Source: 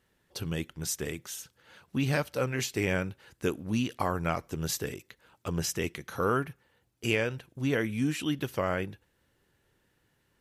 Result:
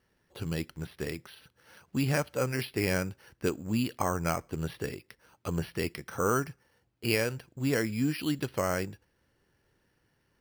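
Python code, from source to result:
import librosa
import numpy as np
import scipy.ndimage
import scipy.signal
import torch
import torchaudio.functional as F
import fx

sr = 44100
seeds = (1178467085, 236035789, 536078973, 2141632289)

y = np.repeat(scipy.signal.resample_poly(x, 1, 6), 6)[:len(x)]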